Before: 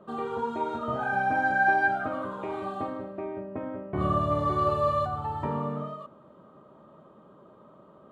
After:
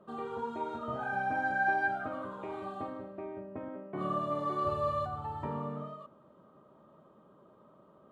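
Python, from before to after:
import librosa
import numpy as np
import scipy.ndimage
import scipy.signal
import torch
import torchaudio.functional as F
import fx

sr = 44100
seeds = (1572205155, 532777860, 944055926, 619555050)

y = fx.highpass(x, sr, hz=160.0, slope=24, at=(3.68, 4.65))
y = F.gain(torch.from_numpy(y), -6.5).numpy()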